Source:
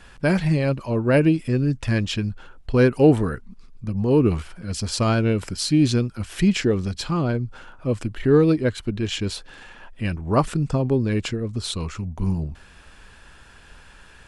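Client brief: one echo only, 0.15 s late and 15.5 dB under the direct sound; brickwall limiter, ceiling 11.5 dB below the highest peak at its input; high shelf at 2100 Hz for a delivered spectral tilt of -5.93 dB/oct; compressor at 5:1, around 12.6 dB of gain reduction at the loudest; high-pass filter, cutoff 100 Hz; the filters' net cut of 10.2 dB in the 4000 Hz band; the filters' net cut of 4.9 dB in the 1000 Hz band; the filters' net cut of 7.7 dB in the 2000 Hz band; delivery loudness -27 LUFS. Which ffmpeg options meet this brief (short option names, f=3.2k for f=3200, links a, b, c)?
-af "highpass=100,equalizer=f=1k:t=o:g=-4,equalizer=f=2k:t=o:g=-5,highshelf=f=2.1k:g=-3.5,equalizer=f=4k:t=o:g=-8,acompressor=threshold=-25dB:ratio=5,alimiter=level_in=3dB:limit=-24dB:level=0:latency=1,volume=-3dB,aecho=1:1:150:0.168,volume=9dB"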